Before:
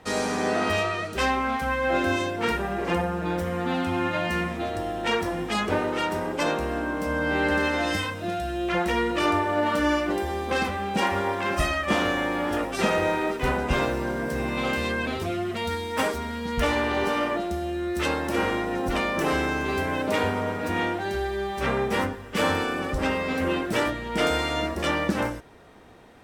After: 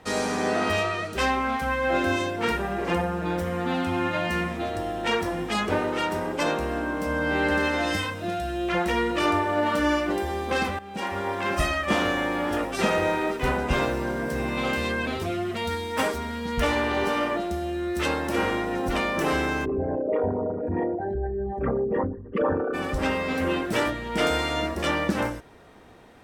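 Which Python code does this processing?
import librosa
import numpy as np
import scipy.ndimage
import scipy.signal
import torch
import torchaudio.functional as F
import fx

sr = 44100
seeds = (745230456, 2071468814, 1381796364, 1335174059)

y = fx.envelope_sharpen(x, sr, power=3.0, at=(19.64, 22.73), fade=0.02)
y = fx.edit(y, sr, fx.fade_in_from(start_s=10.79, length_s=0.68, floor_db=-15.0), tone=tone)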